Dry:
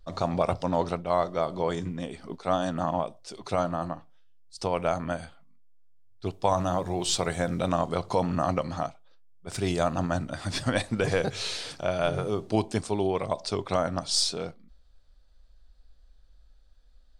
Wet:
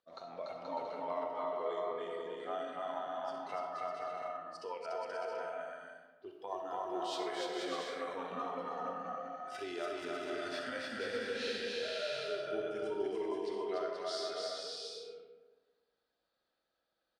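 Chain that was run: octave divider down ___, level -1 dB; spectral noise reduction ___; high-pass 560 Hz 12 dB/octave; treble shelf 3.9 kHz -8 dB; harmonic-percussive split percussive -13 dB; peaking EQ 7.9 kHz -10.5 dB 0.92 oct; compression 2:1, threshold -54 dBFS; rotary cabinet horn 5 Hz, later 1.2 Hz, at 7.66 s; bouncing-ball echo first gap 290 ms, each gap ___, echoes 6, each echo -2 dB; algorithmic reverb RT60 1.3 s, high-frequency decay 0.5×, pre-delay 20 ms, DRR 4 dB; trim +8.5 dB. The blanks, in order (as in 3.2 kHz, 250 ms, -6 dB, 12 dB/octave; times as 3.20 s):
2 oct, 12 dB, 0.65×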